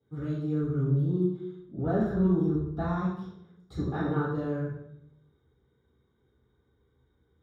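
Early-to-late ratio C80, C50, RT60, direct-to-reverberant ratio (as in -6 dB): 4.0 dB, 0.5 dB, 0.75 s, -11.5 dB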